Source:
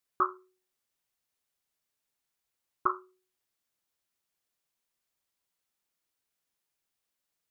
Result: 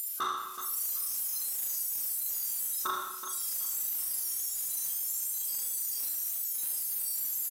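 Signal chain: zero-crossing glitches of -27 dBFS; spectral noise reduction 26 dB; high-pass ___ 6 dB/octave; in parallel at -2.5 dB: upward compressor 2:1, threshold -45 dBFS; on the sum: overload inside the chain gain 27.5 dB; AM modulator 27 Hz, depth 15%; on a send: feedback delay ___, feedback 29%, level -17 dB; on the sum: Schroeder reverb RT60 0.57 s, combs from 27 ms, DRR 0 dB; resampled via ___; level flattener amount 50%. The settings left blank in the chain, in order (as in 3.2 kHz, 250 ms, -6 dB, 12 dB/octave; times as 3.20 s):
1.5 kHz, 376 ms, 32 kHz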